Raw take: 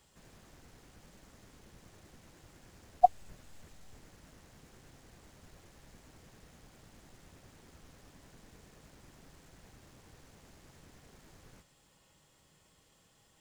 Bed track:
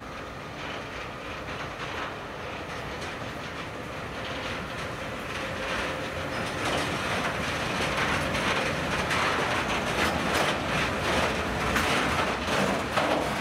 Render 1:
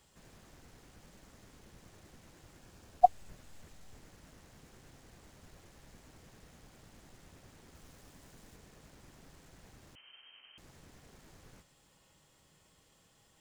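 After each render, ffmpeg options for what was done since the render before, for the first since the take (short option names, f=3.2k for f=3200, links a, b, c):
-filter_complex "[0:a]asettb=1/sr,asplit=3[a][b][c];[a]atrim=end=2.594[d];[b]atrim=start=2.59:end=3.01,asetpts=PTS-STARTPTS,afade=t=in:d=0.004:c=qsin,afade=t=out:st=0.416:d=0.004:c=qsin,bandreject=f=2k:w=10[e];[c]atrim=start=3.006[f];[d][e]acrossfade=d=0.004:c1=hsin:c2=qsin[g];[g][f]acrossfade=d=0.004:c1=qsin:c2=hsin,asettb=1/sr,asplit=3[h][i][j];[h]atrim=end=7.754[k];[i]atrim=start=7.75:end=8.56,asetpts=PTS-STARTPTS,afade=t=in:d=0.004:c=qsin,afade=t=out:st=0.806:d=0.004:c=qsin,highshelf=f=7.5k:g=5.5[l];[j]atrim=start=8.556[m];[k][l]acrossfade=d=0.004:c1=hsin:c2=qsin[n];[n][m]acrossfade=d=0.004:c1=qsin:c2=hsin,asettb=1/sr,asplit=3[o][p][q];[o]atrim=end=9.954[r];[p]atrim=start=9.95:end=10.58,asetpts=PTS-STARTPTS,afade=t=in:d=0.004:c=qsin,afade=t=out:st=0.626:d=0.004:c=qsin,lowpass=f=2.7k:t=q:w=0.5098,lowpass=f=2.7k:t=q:w=0.6013,lowpass=f=2.7k:t=q:w=0.9,lowpass=f=2.7k:t=q:w=2.563,afreqshift=-3200[s];[q]atrim=start=10.576[t];[r][s]acrossfade=d=0.004:c1=hsin:c2=qsin[u];[u][t]acrossfade=d=0.004:c1=qsin:c2=hsin"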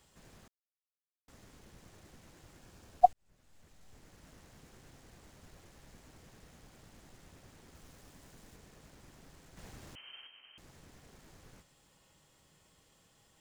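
-filter_complex "[0:a]asettb=1/sr,asplit=3[a][b][c];[a]atrim=end=9.574[d];[b]atrim=start=9.57:end=10.27,asetpts=PTS-STARTPTS,afade=t=in:d=0.004:c=qsin,afade=t=out:st=0.696:d=0.004:c=qsin,acontrast=59[e];[c]atrim=start=10.266[f];[d][e]acrossfade=d=0.004:c1=hsin:c2=qsin[g];[g][f]acrossfade=d=0.004:c1=qsin:c2=hsin,asplit=4[h][i][j][k];[h]atrim=end=0.48,asetpts=PTS-STARTPTS,afade=t=out:st=0.476:d=0.004:c=hsin[l];[i]atrim=start=0.48:end=1.28,asetpts=PTS-STARTPTS,volume=0[m];[j]atrim=start=1.28:end=3.13,asetpts=PTS-STARTPTS,afade=t=in:d=0.004:c=hsin,afade=t=out:st=1.846:d=0.004:c=hsin[n];[k]atrim=start=3.13,asetpts=PTS-STARTPTS,afade=t=in:d=1.19[o];[l][m][n][o]concat=n=4:v=0:a=1"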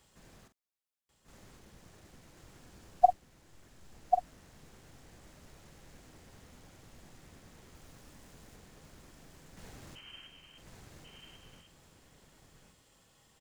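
-filter_complex "[0:a]asplit=2[a][b];[b]adelay=45,volume=-10dB[c];[a][c]amix=inputs=2:normalize=0,asplit=2[d][e];[e]aecho=0:1:1091:0.562[f];[d][f]amix=inputs=2:normalize=0"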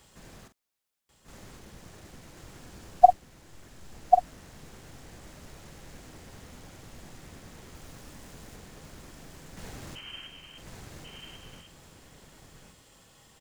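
-af "volume=8dB,alimiter=limit=-1dB:level=0:latency=1"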